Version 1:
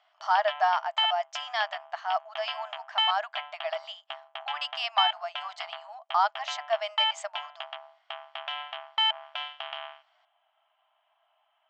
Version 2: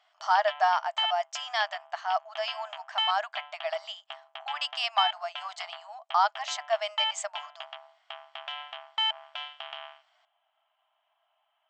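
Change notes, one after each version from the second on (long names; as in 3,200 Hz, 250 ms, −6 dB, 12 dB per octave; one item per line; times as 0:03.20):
background −4.0 dB
master: remove high-frequency loss of the air 87 metres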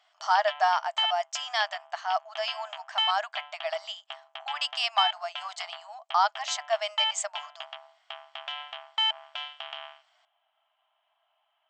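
master: add high-shelf EQ 5,000 Hz +7 dB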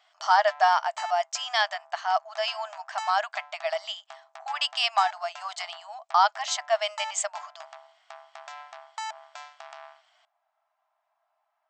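speech +3.0 dB
background: remove low-pass with resonance 3,100 Hz, resonance Q 15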